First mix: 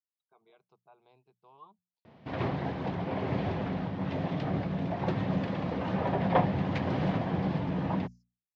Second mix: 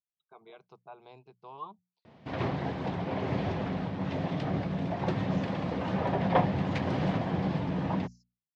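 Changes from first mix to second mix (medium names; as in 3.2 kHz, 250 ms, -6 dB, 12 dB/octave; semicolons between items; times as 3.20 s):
speech +11.5 dB; background: remove distance through air 72 m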